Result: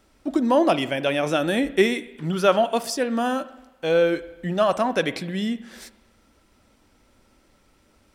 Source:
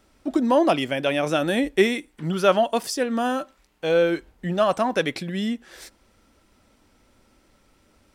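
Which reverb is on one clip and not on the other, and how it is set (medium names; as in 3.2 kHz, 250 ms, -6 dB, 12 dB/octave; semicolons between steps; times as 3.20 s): spring tank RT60 1 s, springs 43/54 ms, chirp 25 ms, DRR 15 dB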